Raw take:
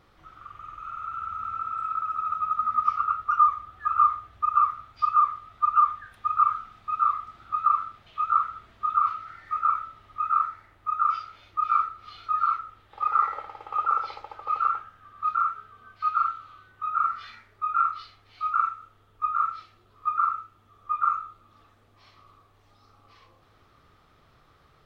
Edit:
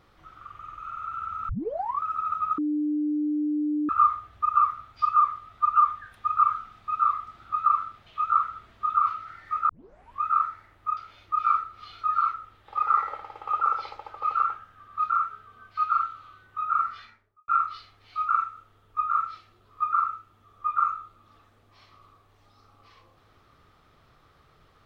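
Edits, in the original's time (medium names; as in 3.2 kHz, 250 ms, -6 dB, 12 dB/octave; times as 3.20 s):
1.49 s: tape start 0.54 s
2.58–3.89 s: bleep 299 Hz -23 dBFS
9.69 s: tape start 0.53 s
10.97–11.22 s: delete
17.10–17.73 s: studio fade out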